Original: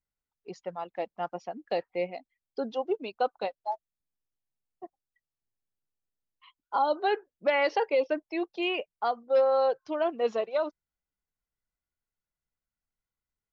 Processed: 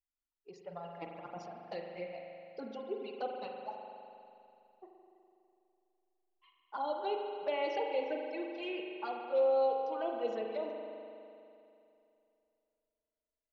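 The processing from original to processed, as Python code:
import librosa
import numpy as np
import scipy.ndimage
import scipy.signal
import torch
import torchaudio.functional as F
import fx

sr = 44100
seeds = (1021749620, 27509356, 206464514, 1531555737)

y = fx.env_flanger(x, sr, rest_ms=3.0, full_db=-22.5)
y = fx.over_compress(y, sr, threshold_db=-40.0, ratio=-0.5, at=(0.71, 1.51), fade=0.02)
y = fx.rev_spring(y, sr, rt60_s=2.7, pass_ms=(41,), chirp_ms=35, drr_db=1.0)
y = y * librosa.db_to_amplitude(-8.0)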